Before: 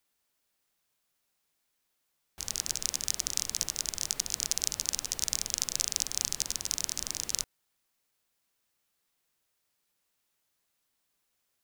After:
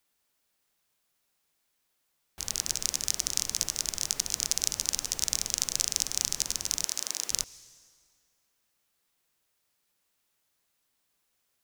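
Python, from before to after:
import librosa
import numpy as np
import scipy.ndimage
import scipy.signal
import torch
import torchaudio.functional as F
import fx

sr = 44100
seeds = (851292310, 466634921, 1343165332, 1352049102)

y = fx.highpass(x, sr, hz=360.0, slope=12, at=(6.84, 7.3))
y = fx.rev_plate(y, sr, seeds[0], rt60_s=2.0, hf_ratio=0.85, predelay_ms=105, drr_db=18.5)
y = y * librosa.db_to_amplitude(2.0)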